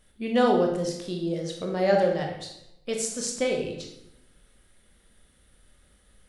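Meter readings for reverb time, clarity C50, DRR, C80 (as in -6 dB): 0.85 s, 4.5 dB, 1.0 dB, 8.0 dB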